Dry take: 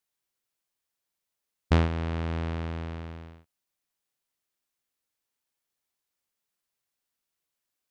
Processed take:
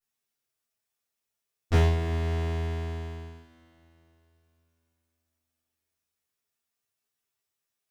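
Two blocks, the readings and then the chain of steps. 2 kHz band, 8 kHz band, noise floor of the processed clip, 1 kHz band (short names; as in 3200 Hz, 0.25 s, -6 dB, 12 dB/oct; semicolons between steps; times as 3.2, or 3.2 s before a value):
0.0 dB, n/a, -85 dBFS, -0.5 dB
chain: minimum comb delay 9.3 ms; two-slope reverb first 0.38 s, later 3.3 s, from -20 dB, DRR -9 dB; gain -8 dB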